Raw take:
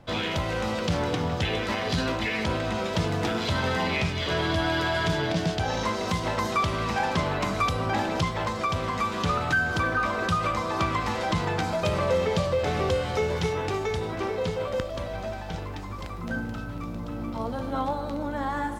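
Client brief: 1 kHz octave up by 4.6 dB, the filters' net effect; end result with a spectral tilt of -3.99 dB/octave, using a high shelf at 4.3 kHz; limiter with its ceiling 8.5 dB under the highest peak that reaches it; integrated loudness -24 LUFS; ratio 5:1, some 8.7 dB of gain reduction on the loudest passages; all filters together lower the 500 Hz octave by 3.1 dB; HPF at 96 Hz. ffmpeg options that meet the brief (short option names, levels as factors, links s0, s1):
-af "highpass=96,equalizer=f=500:t=o:g=-6,equalizer=f=1000:t=o:g=6.5,highshelf=f=4300:g=8.5,acompressor=threshold=0.0447:ratio=5,volume=2.37,alimiter=limit=0.188:level=0:latency=1"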